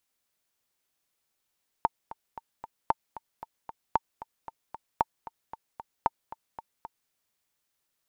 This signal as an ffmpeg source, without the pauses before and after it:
-f lavfi -i "aevalsrc='pow(10,(-9-17*gte(mod(t,4*60/228),60/228))/20)*sin(2*PI*904*mod(t,60/228))*exp(-6.91*mod(t,60/228)/0.03)':d=5.26:s=44100"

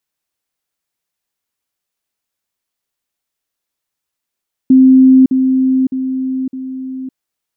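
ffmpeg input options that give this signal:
-f lavfi -i "aevalsrc='pow(10,(-3-6*floor(t/0.61))/20)*sin(2*PI*261*t)*clip(min(mod(t,0.61),0.56-mod(t,0.61))/0.005,0,1)':d=2.44:s=44100"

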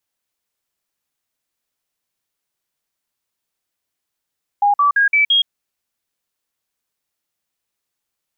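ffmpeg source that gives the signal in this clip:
-f lavfi -i "aevalsrc='0.299*clip(min(mod(t,0.17),0.12-mod(t,0.17))/0.005,0,1)*sin(2*PI*816*pow(2,floor(t/0.17)/2)*mod(t,0.17))':d=0.85:s=44100"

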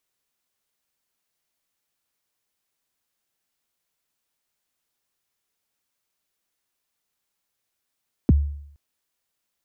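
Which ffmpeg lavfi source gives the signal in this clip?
-f lavfi -i "aevalsrc='0.335*pow(10,-3*t/0.69)*sin(2*PI*(350*0.025/log(72/350)*(exp(log(72/350)*min(t,0.025)/0.025)-1)+72*max(t-0.025,0)))':d=0.47:s=44100"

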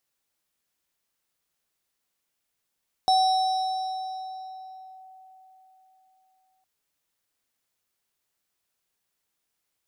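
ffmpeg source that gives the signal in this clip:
-f lavfi -i "aevalsrc='0.158*pow(10,-3*t/4.08)*sin(2*PI*755*t+0.54*clip(1-t/1.96,0,1)*sin(2*PI*6.15*755*t))':d=3.56:s=44100"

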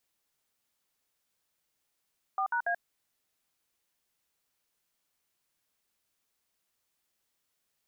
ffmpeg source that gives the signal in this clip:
-f lavfi -i "aevalsrc='0.0335*clip(min(mod(t,0.142),0.083-mod(t,0.142))/0.002,0,1)*(eq(floor(t/0.142),0)*(sin(2*PI*770*mod(t,0.142))+sin(2*PI*1209*mod(t,0.142)))+eq(floor(t/0.142),1)*(sin(2*PI*941*mod(t,0.142))+sin(2*PI*1477*mod(t,0.142)))+eq(floor(t/0.142),2)*(sin(2*PI*697*mod(t,0.142))+sin(2*PI*1633*mod(t,0.142))))':d=0.426:s=44100"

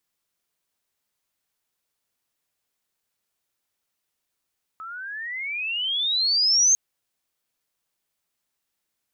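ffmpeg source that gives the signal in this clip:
-f lavfi -i "aevalsrc='pow(10,(-14+20*(t/1.95-1))/20)*sin(2*PI*1280*1.95/(28*log(2)/12)*(exp(28*log(2)/12*t/1.95)-1))':d=1.95:s=44100"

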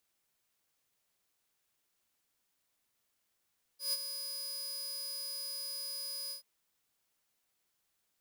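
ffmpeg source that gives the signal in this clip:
-f lavfi -i "aevalsrc='0.0447*(2*mod(4960*t,1)-1)':d=2.633:s=44100,afade=t=in:d=0.139,afade=t=out:st=0.139:d=0.033:silence=0.355,afade=t=out:st=2.52:d=0.113"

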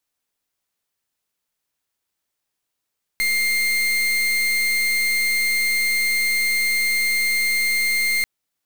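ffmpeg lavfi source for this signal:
-f lavfi -i "aevalsrc='0.1*(2*lt(mod(2110*t,1),0.37)-1)':d=5.04:s=44100"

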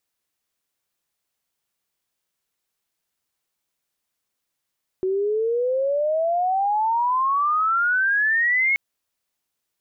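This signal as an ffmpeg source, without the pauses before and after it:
-f lavfi -i "aevalsrc='pow(10,(-19.5+3*t/3.73)/20)*sin(2*PI*370*3.73/log(2200/370)*(exp(log(2200/370)*t/3.73)-1))':d=3.73:s=44100"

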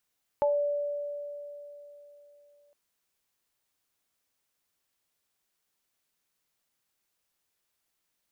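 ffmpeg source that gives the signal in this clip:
-f lavfi -i "aevalsrc='0.0841*pow(10,-3*t/3.5)*sin(2*PI*580*t)+0.0631*pow(10,-3*t/0.24)*sin(2*PI*865*t)':d=2.31:s=44100"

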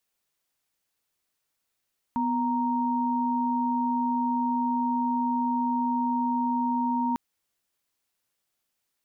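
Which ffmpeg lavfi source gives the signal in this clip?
-f lavfi -i "aevalsrc='0.0501*(sin(2*PI*246.94*t)+sin(2*PI*932.33*t))':d=5:s=44100"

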